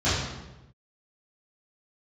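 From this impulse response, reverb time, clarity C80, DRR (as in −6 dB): 1.0 s, 3.0 dB, −14.5 dB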